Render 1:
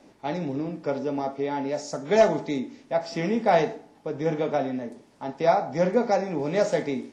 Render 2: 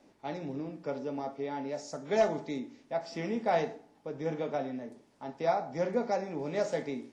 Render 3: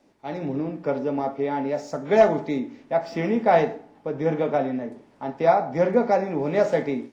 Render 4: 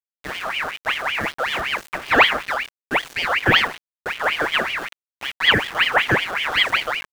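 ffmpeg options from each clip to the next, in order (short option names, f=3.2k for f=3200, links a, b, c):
-af "bandreject=f=60:t=h:w=6,bandreject=f=120:t=h:w=6,bandreject=f=180:t=h:w=6,volume=-8dB"
-filter_complex "[0:a]acrossover=split=3000[a][b];[a]dynaudnorm=f=220:g=3:m=10.5dB[c];[b]acrusher=bits=4:mode=log:mix=0:aa=0.000001[d];[c][d]amix=inputs=2:normalize=0"
-af "aeval=exprs='val(0)*gte(abs(val(0)),0.0251)':c=same,aeval=exprs='val(0)*sin(2*PI*1800*n/s+1800*0.5/5.3*sin(2*PI*5.3*n/s))':c=same,volume=4.5dB"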